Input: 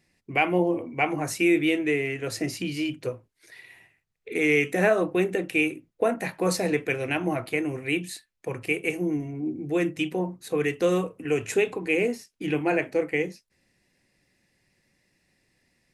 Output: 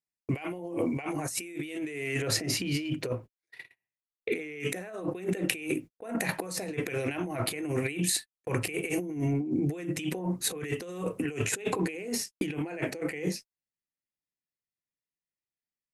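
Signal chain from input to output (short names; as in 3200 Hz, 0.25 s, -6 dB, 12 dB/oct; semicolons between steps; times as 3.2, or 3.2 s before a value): gate -45 dBFS, range -44 dB; bell 9200 Hz +12 dB 1.6 oct, from 2.22 s -3.5 dB, from 4.6 s +5 dB; negative-ratio compressor -35 dBFS, ratio -1; gain +1.5 dB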